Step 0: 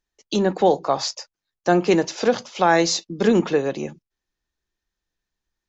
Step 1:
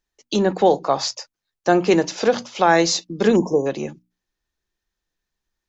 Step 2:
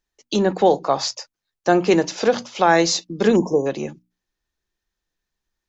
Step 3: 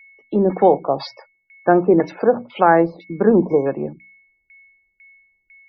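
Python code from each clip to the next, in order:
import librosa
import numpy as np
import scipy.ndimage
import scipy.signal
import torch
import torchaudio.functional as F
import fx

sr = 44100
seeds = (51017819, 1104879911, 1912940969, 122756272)

y1 = fx.spec_erase(x, sr, start_s=3.36, length_s=0.3, low_hz=1100.0, high_hz=5100.0)
y1 = fx.hum_notches(y1, sr, base_hz=60, count=5)
y1 = y1 * 10.0 ** (1.5 / 20.0)
y2 = y1
y3 = y2 + 10.0 ** (-47.0 / 20.0) * np.sin(2.0 * np.pi * 2200.0 * np.arange(len(y2)) / sr)
y3 = fx.filter_lfo_lowpass(y3, sr, shape='saw_down', hz=2.0, low_hz=440.0, high_hz=3400.0, q=0.9)
y3 = fx.spec_topn(y3, sr, count=64)
y3 = y3 * 10.0 ** (2.0 / 20.0)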